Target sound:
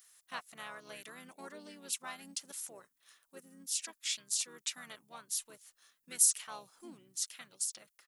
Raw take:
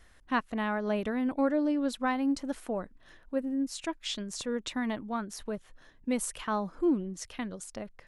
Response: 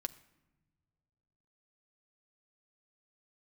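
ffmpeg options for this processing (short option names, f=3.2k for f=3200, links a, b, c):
-filter_complex "[0:a]asplit=3[a][b][c];[b]asetrate=29433,aresample=44100,atempo=1.49831,volume=-3dB[d];[c]asetrate=35002,aresample=44100,atempo=1.25992,volume=-7dB[e];[a][d][e]amix=inputs=3:normalize=0,crystalizer=i=1.5:c=0,aderivative"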